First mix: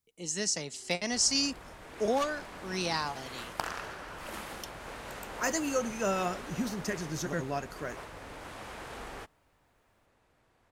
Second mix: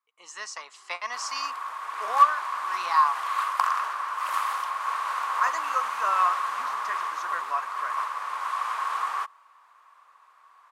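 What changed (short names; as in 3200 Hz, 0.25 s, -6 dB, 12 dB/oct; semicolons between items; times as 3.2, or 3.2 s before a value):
speech: add tone controls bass -6 dB, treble -12 dB; first sound +5.5 dB; master: add resonant high-pass 1100 Hz, resonance Q 12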